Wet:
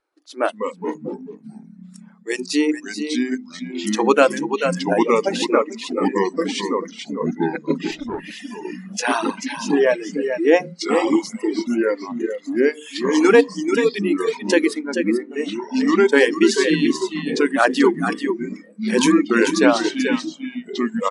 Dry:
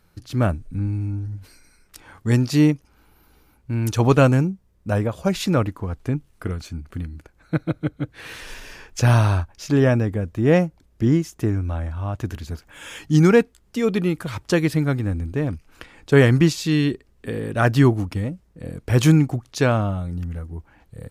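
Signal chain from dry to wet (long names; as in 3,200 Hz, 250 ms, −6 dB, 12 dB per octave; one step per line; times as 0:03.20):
linear-phase brick-wall band-pass 270–11,000 Hz
mains-hum notches 60/120/180/240/300/360/420/480/540 Hz
delay with pitch and tempo change per echo 125 ms, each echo −3 semitones, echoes 3
0:14.79–0:15.31: high-shelf EQ 2,800 Hz −11 dB
single-tap delay 437 ms −6 dB
noise reduction from a noise print of the clip's start 14 dB
0:05.06–0:06.06: high-shelf EQ 8,600 Hz −7.5 dB
0:07.91–0:08.31: tube saturation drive 24 dB, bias 0.35
reverb reduction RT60 1.2 s
one half of a high-frequency compander decoder only
level +5 dB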